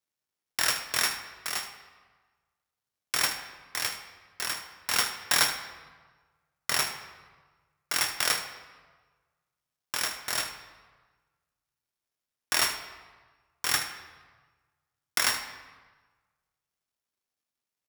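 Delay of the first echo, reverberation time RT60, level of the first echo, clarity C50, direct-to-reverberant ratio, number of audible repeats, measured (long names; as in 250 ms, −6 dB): 76 ms, 1.4 s, −12.5 dB, 7.5 dB, 5.0 dB, 1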